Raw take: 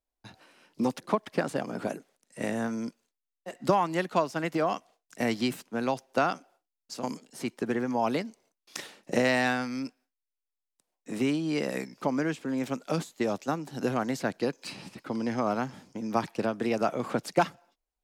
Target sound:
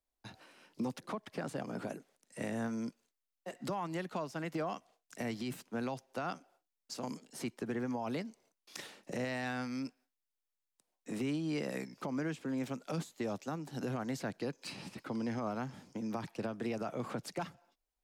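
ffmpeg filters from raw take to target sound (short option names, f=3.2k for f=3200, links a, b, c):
-filter_complex "[0:a]acrossover=split=160[a][b];[b]acompressor=threshold=-43dB:ratio=1.5[c];[a][c]amix=inputs=2:normalize=0,alimiter=level_in=2.5dB:limit=-24dB:level=0:latency=1:release=47,volume=-2.5dB,volume=-1.5dB"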